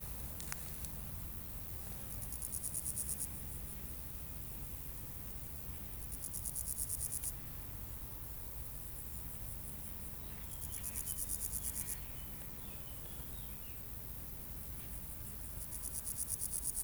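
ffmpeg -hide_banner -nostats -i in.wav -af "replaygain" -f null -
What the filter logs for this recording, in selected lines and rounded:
track_gain = +32.7 dB
track_peak = 0.098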